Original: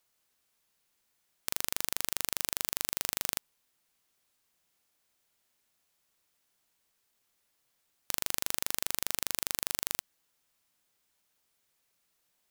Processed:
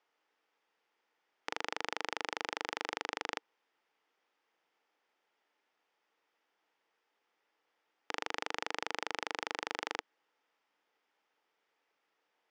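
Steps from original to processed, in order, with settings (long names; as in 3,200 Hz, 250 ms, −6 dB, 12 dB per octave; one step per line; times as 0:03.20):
loudspeaker in its box 310–4,600 Hz, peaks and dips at 310 Hz +6 dB, 460 Hz +8 dB, 850 Hz +8 dB, 1,300 Hz +4 dB, 1,900 Hz +4 dB, 4,100 Hz −9 dB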